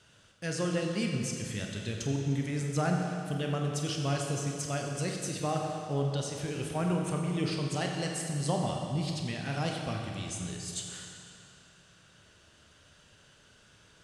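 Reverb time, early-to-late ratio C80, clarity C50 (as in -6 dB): 2.6 s, 2.5 dB, 2.0 dB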